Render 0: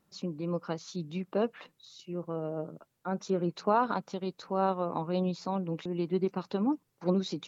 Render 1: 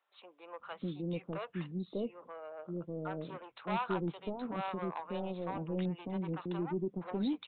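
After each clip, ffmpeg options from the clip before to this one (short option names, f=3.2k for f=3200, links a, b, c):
-filter_complex "[0:a]aresample=8000,asoftclip=type=tanh:threshold=-26dB,aresample=44100,acrossover=split=600[a][b];[a]adelay=600[c];[c][b]amix=inputs=2:normalize=0,volume=-1.5dB"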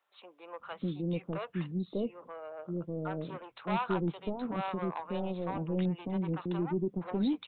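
-af "lowshelf=f=200:g=4.5,volume=2dB"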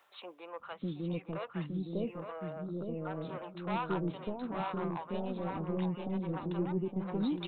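-filter_complex "[0:a]areverse,acompressor=mode=upward:threshold=-33dB:ratio=2.5,areverse,asplit=2[a][b];[b]adelay=864,lowpass=f=2k:p=1,volume=-5dB,asplit=2[c][d];[d]adelay=864,lowpass=f=2k:p=1,volume=0.23,asplit=2[e][f];[f]adelay=864,lowpass=f=2k:p=1,volume=0.23[g];[a][c][e][g]amix=inputs=4:normalize=0,volume=-3dB"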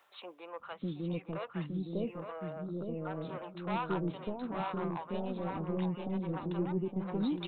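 -af anull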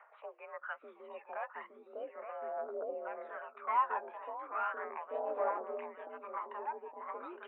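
-af "aphaser=in_gain=1:out_gain=1:delay=1.3:decay=0.63:speed=0.37:type=triangular,highpass=f=480:t=q:w=0.5412,highpass=f=480:t=q:w=1.307,lowpass=f=2.1k:t=q:w=0.5176,lowpass=f=2.1k:t=q:w=0.7071,lowpass=f=2.1k:t=q:w=1.932,afreqshift=56,volume=1.5dB"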